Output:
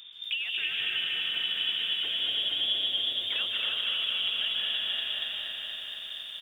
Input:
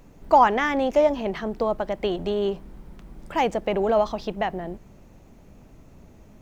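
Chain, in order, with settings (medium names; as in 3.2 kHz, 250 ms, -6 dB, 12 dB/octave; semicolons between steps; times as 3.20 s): tracing distortion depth 0.023 ms; dynamic bell 220 Hz, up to +7 dB, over -46 dBFS, Q 3.5; frequency inversion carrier 3.6 kHz; peaking EQ 890 Hz -6 dB 0.51 oct; plate-style reverb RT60 2.6 s, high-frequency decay 0.75×, pre-delay 120 ms, DRR 0 dB; compression 10:1, threshold -31 dBFS, peak gain reduction 19.5 dB; delay 323 ms -3.5 dB; bit-crushed delay 237 ms, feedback 80%, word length 10-bit, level -5.5 dB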